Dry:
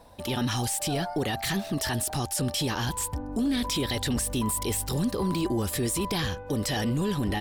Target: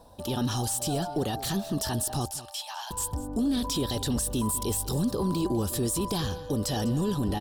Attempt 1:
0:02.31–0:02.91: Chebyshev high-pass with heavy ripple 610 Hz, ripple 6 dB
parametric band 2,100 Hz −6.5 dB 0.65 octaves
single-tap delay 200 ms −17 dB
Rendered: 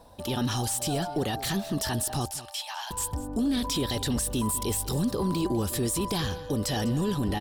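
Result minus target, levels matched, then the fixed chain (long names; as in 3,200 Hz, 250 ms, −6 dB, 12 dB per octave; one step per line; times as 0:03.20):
2,000 Hz band +4.5 dB
0:02.31–0:02.91: Chebyshev high-pass with heavy ripple 610 Hz, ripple 6 dB
parametric band 2,100 Hz −15 dB 0.65 octaves
single-tap delay 200 ms −17 dB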